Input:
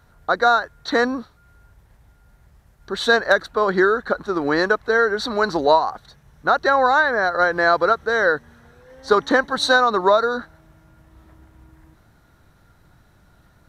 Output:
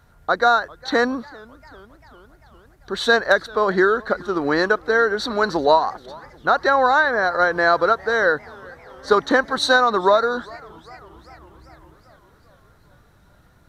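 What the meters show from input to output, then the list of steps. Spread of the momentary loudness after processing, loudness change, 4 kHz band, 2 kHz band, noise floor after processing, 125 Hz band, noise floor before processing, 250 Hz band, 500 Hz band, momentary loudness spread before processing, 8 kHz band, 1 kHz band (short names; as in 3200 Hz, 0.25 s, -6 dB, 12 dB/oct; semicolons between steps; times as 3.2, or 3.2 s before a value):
9 LU, 0.0 dB, 0.0 dB, 0.0 dB, -54 dBFS, 0.0 dB, -56 dBFS, 0.0 dB, 0.0 dB, 8 LU, 0.0 dB, 0.0 dB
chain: warbling echo 0.4 s, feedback 64%, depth 187 cents, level -24 dB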